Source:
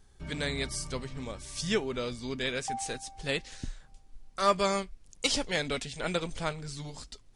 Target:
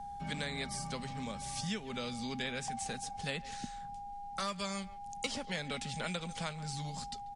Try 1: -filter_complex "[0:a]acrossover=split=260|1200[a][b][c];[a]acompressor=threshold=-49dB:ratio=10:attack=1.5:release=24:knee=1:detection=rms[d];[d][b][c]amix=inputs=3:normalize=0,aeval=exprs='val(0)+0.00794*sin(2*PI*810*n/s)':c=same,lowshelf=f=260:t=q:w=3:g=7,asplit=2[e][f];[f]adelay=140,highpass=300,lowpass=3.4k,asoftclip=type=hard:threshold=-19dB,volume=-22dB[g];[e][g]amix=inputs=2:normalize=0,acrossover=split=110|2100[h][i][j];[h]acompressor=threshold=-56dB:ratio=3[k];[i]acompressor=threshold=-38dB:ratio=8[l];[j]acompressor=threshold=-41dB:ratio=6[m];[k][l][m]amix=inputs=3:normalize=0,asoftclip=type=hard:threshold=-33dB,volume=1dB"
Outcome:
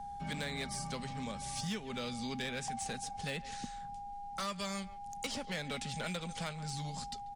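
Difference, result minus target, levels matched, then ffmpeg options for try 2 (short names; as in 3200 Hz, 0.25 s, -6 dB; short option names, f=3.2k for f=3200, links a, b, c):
hard clip: distortion +34 dB
-filter_complex "[0:a]acrossover=split=260|1200[a][b][c];[a]acompressor=threshold=-49dB:ratio=10:attack=1.5:release=24:knee=1:detection=rms[d];[d][b][c]amix=inputs=3:normalize=0,aeval=exprs='val(0)+0.00794*sin(2*PI*810*n/s)':c=same,lowshelf=f=260:t=q:w=3:g=7,asplit=2[e][f];[f]adelay=140,highpass=300,lowpass=3.4k,asoftclip=type=hard:threshold=-19dB,volume=-22dB[g];[e][g]amix=inputs=2:normalize=0,acrossover=split=110|2100[h][i][j];[h]acompressor=threshold=-56dB:ratio=3[k];[i]acompressor=threshold=-38dB:ratio=8[l];[j]acompressor=threshold=-41dB:ratio=6[m];[k][l][m]amix=inputs=3:normalize=0,asoftclip=type=hard:threshold=-24dB,volume=1dB"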